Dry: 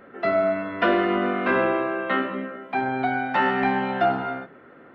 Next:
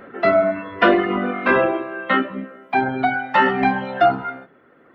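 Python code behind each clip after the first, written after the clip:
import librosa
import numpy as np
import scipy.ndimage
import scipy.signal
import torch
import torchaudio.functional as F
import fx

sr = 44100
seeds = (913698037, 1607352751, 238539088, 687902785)

y = fx.dereverb_blind(x, sr, rt60_s=1.9)
y = y * librosa.db_to_amplitude(7.0)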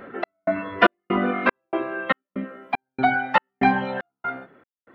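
y = fx.step_gate(x, sr, bpm=191, pattern='xxx...xx', floor_db=-60.0, edge_ms=4.5)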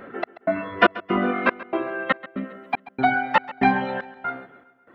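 y = fx.echo_feedback(x, sr, ms=135, feedback_pct=56, wet_db=-18.0)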